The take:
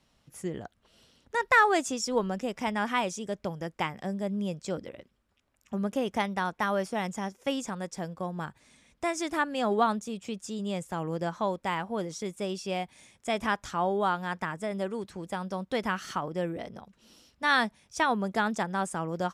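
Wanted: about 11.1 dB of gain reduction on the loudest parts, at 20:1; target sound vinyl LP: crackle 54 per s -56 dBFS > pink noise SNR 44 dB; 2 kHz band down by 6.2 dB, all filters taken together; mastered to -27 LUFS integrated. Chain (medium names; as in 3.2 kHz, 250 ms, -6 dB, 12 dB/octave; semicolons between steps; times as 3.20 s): peaking EQ 2 kHz -8 dB; compression 20:1, threshold -30 dBFS; crackle 54 per s -56 dBFS; pink noise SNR 44 dB; trim +10 dB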